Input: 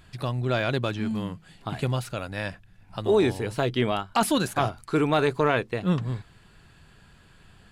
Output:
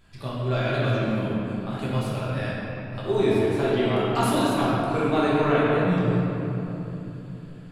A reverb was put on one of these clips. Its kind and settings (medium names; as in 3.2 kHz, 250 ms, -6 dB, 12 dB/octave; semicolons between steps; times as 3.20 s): simulated room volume 190 m³, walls hard, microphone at 1.2 m; trim -7.5 dB